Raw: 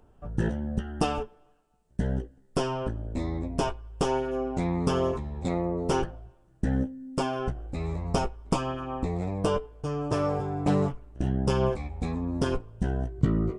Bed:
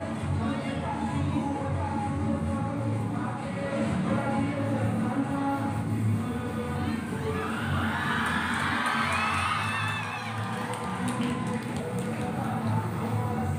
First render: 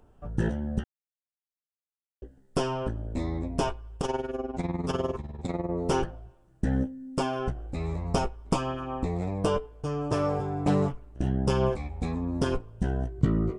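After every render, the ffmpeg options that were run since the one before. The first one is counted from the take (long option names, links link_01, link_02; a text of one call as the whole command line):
ffmpeg -i in.wav -filter_complex "[0:a]asplit=3[link_01][link_02][link_03];[link_01]afade=type=out:start_time=3.97:duration=0.02[link_04];[link_02]tremolo=f=20:d=0.75,afade=type=in:start_time=3.97:duration=0.02,afade=type=out:start_time=5.69:duration=0.02[link_05];[link_03]afade=type=in:start_time=5.69:duration=0.02[link_06];[link_04][link_05][link_06]amix=inputs=3:normalize=0,asplit=3[link_07][link_08][link_09];[link_07]atrim=end=0.84,asetpts=PTS-STARTPTS,afade=type=out:start_time=0.836:duration=0.004:curve=hsin[link_10];[link_08]atrim=start=0.84:end=2.22,asetpts=PTS-STARTPTS,volume=0[link_11];[link_09]atrim=start=2.22,asetpts=PTS-STARTPTS,afade=type=in:duration=0.004:curve=hsin[link_12];[link_10][link_11][link_12]concat=n=3:v=0:a=1" out.wav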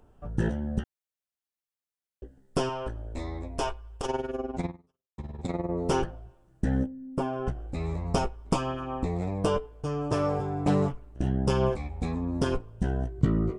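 ffmpeg -i in.wav -filter_complex "[0:a]asettb=1/sr,asplit=3[link_01][link_02][link_03];[link_01]atrim=end=2.694[link_04];[link_02]atrim=start=2.69:end=4.06,asetpts=PTS-STARTPTS,afade=type=in:duration=0.004:curve=qsin,afade=type=out:start_time=1.366:duration=0.004:curve=qsin,equalizer=frequency=180:width=0.91:gain=-12.5[link_05];[link_03]atrim=start=4.056[link_06];[link_04][link_05]acrossfade=duration=0.004:curve1=hsin:curve2=qsin[link_07];[link_07][link_06]acrossfade=duration=0.004:curve1=qsin:curve2=hsin,asettb=1/sr,asplit=3[link_08][link_09][link_10];[link_08]atrim=end=6.864[link_11];[link_09]atrim=start=6.86:end=7.47,asetpts=PTS-STARTPTS,afade=type=in:duration=0.004:curve=qsin,afade=type=out:start_time=0.606:duration=0.004:curve=qsin,equalizer=frequency=5600:width_type=o:width=2.9:gain=-14.5[link_12];[link_10]atrim=start=7.466[link_13];[link_11][link_12]acrossfade=duration=0.004:curve1=hsin:curve2=qsin[link_14];[link_14][link_13]acrossfade=duration=0.004:curve1=qsin:curve2=hsin,asplit=2[link_15][link_16];[link_15]atrim=end=5.18,asetpts=PTS-STARTPTS,afade=type=out:start_time=4.66:duration=0.52:curve=exp[link_17];[link_16]atrim=start=5.18,asetpts=PTS-STARTPTS,afade=type=in:duration=0.004:curve=hsin[link_18];[link_17][link_18]concat=n=2:v=0:a=1" out.wav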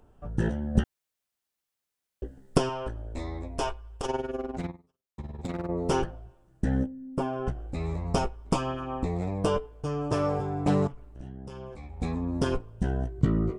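ffmpeg -i in.wav -filter_complex "[0:a]asettb=1/sr,asplit=3[link_01][link_02][link_03];[link_01]atrim=end=0.754[link_04];[link_02]atrim=start=0.75:end=2.58,asetpts=PTS-STARTPTS,afade=type=in:duration=0.004:curve=qsin,afade=type=out:start_time=1.826:duration=0.004:curve=qsin,acontrast=88[link_05];[link_03]atrim=start=2.576[link_06];[link_04][link_05]acrossfade=duration=0.004:curve1=hsin:curve2=qsin[link_07];[link_07][link_06]acrossfade=duration=0.004:curve1=qsin:curve2=hsin,asplit=3[link_08][link_09][link_10];[link_08]afade=type=out:start_time=4.39:duration=0.02[link_11];[link_09]asoftclip=type=hard:threshold=-27dB,afade=type=in:start_time=4.39:duration=0.02,afade=type=out:start_time=5.66:duration=0.02[link_12];[link_10]afade=type=in:start_time=5.66:duration=0.02[link_13];[link_11][link_12][link_13]amix=inputs=3:normalize=0,asettb=1/sr,asplit=3[link_14][link_15][link_16];[link_14]atrim=end=10.874[link_17];[link_15]atrim=start=10.87:end=12,asetpts=PTS-STARTPTS,afade=type=in:duration=0.004:curve=qsin,afade=type=out:start_time=1.126:duration=0.004:curve=qsin,acompressor=threshold=-37dB:ratio=10:attack=3.2:release=140:knee=1:detection=peak[link_18];[link_16]atrim=start=11.996[link_19];[link_17][link_18]acrossfade=duration=0.004:curve1=hsin:curve2=qsin[link_20];[link_20][link_19]acrossfade=duration=0.004:curve1=qsin:curve2=hsin" out.wav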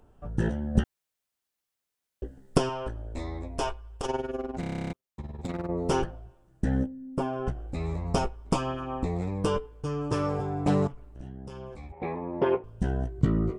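ffmpeg -i in.wav -filter_complex "[0:a]asettb=1/sr,asplit=3[link_01][link_02][link_03];[link_01]atrim=end=9.214[link_04];[link_02]atrim=start=9.21:end=10.39,asetpts=PTS-STARTPTS,afade=type=in:duration=0.004:curve=qsin,afade=type=out:start_time=1.176:duration=0.004:curve=qsin,equalizer=frequency=670:width_type=o:width=0.24:gain=-13[link_05];[link_03]atrim=start=10.386[link_06];[link_04][link_05]acrossfade=duration=0.004:curve1=hsin:curve2=qsin[link_07];[link_07][link_06]acrossfade=duration=0.004:curve1=qsin:curve2=hsin,asettb=1/sr,asplit=3[link_08][link_09][link_10];[link_08]atrim=end=11.924[link_11];[link_09]atrim=start=11.92:end=12.64,asetpts=PTS-STARTPTS,afade=type=in:duration=0.004:curve=qsin,afade=type=out:start_time=0.716:duration=0.004:curve=qsin,highpass=190,equalizer=frequency=250:width_type=q:width=4:gain=-9,equalizer=frequency=370:width_type=q:width=4:gain=9,equalizer=frequency=580:width_type=q:width=4:gain=6,equalizer=frequency=890:width_type=q:width=4:gain=8,equalizer=frequency=1400:width_type=q:width=4:gain=-3,equalizer=frequency=2100:width_type=q:width=4:gain=7,lowpass=frequency=2700:width=0.5412,lowpass=frequency=2700:width=1.3066[link_12];[link_10]atrim=start=12.636[link_13];[link_11][link_12]acrossfade=duration=0.004:curve1=hsin:curve2=qsin[link_14];[link_14][link_13]acrossfade=duration=0.004:curve1=qsin:curve2=hsin,asplit=12[link_15][link_16][link_17][link_18][link_19][link_20][link_21][link_22][link_23][link_24][link_25][link_26];[link_15]atrim=end=4.632[link_27];[link_16]atrim=start=4.598:end=4.632[link_28];[link_17]atrim=start=4.598:end=4.632[link_29];[link_18]atrim=start=4.598:end=4.632[link_30];[link_19]atrim=start=4.598:end=4.632[link_31];[link_20]atrim=start=4.598:end=4.632[link_32];[link_21]atrim=start=4.598:end=4.632[link_33];[link_22]atrim=start=4.598:end=4.632[link_34];[link_23]atrim=start=4.598:end=4.632[link_35];[link_24]atrim=start=4.598:end=4.632[link_36];[link_25]atrim=start=4.598:end=4.632[link_37];[link_26]atrim=start=4.928[link_38];[link_27][link_28]acrossfade=duration=0.004:curve1=hsin:curve2=hsin[link_39];[link_39][link_29]acrossfade=duration=0.004:curve1=hsin:curve2=hsin[link_40];[link_40][link_30]acrossfade=duration=0.004:curve1=hsin:curve2=hsin[link_41];[link_41][link_31]acrossfade=duration=0.004:curve1=hsin:curve2=hsin[link_42];[link_42][link_32]acrossfade=duration=0.004:curve1=hsin:curve2=hsin[link_43];[link_43][link_33]acrossfade=duration=0.004:curve1=hsin:curve2=hsin[link_44];[link_44][link_34]acrossfade=duration=0.004:curve1=hsin:curve2=hsin[link_45];[link_45][link_35]acrossfade=duration=0.004:curve1=hsin:curve2=hsin[link_46];[link_46][link_36]acrossfade=duration=0.004:curve1=hsin:curve2=hsin[link_47];[link_47][link_37]acrossfade=duration=0.004:curve1=hsin:curve2=hsin[link_48];[link_48][link_38]acrossfade=duration=0.004:curve1=hsin:curve2=hsin" out.wav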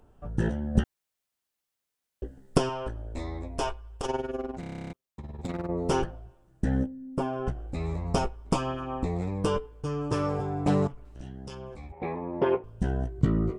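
ffmpeg -i in.wav -filter_complex "[0:a]asettb=1/sr,asplit=3[link_01][link_02][link_03];[link_01]atrim=end=4.514[link_04];[link_02]atrim=start=4.51:end=5.38,asetpts=PTS-STARTPTS,afade=type=in:duration=0.004:curve=qsin,afade=type=out:start_time=0.866:duration=0.004:curve=qsin,acompressor=threshold=-34dB:ratio=6:attack=3.2:release=140:knee=1:detection=peak[link_05];[link_03]atrim=start=5.376[link_06];[link_04][link_05]acrossfade=duration=0.004:curve1=hsin:curve2=qsin[link_07];[link_07][link_06]acrossfade=duration=0.004:curve1=qsin:curve2=hsin,asettb=1/sr,asplit=3[link_08][link_09][link_10];[link_08]atrim=end=11.054[link_11];[link_09]atrim=start=11.05:end=11.55,asetpts=PTS-STARTPTS,afade=type=in:duration=0.004:curve=qsin,afade=type=out:start_time=0.496:duration=0.004:curve=qsin,equalizer=frequency=4700:width=0.47:gain=9.5[link_12];[link_10]atrim=start=11.546[link_13];[link_11][link_12]acrossfade=duration=0.004:curve1=hsin:curve2=qsin[link_14];[link_14][link_13]acrossfade=duration=0.004:curve1=qsin:curve2=hsin" out.wav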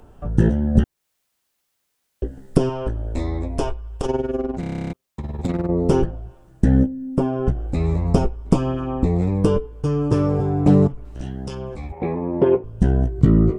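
ffmpeg -i in.wav -filter_complex "[0:a]acrossover=split=490[link_01][link_02];[link_02]acompressor=threshold=-52dB:ratio=2[link_03];[link_01][link_03]amix=inputs=2:normalize=0,alimiter=level_in=11.5dB:limit=-1dB:release=50:level=0:latency=1" out.wav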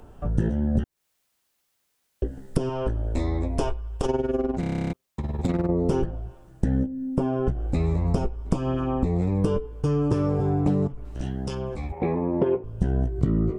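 ffmpeg -i in.wav -af "acompressor=threshold=-19dB:ratio=6" out.wav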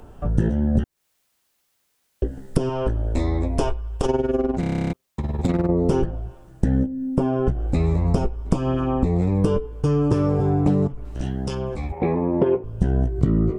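ffmpeg -i in.wav -af "volume=3.5dB" out.wav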